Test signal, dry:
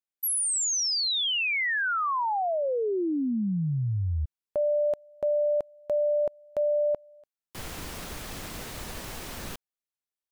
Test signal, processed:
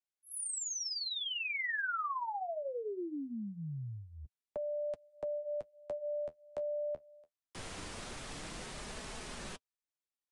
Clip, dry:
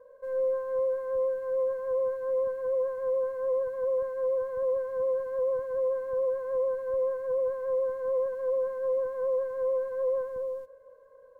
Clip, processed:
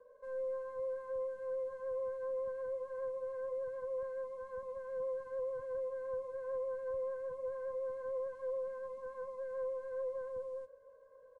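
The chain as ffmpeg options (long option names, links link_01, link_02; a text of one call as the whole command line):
ffmpeg -i in.wav -filter_complex "[0:a]acrossover=split=200|480|1400[link_01][link_02][link_03][link_04];[link_01]acompressor=threshold=-41dB:ratio=4[link_05];[link_02]acompressor=threshold=-44dB:ratio=4[link_06];[link_03]acompressor=threshold=-37dB:ratio=4[link_07];[link_04]acompressor=threshold=-33dB:ratio=4[link_08];[link_05][link_06][link_07][link_08]amix=inputs=4:normalize=0,flanger=delay=4.6:depth=9:regen=-40:speed=0.22:shape=sinusoidal,aresample=22050,aresample=44100,volume=-1.5dB" out.wav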